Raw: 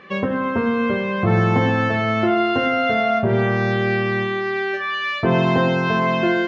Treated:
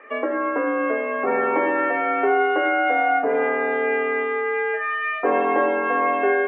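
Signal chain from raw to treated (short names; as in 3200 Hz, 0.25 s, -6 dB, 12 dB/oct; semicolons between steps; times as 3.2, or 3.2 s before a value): mistuned SSB +54 Hz 270–2300 Hz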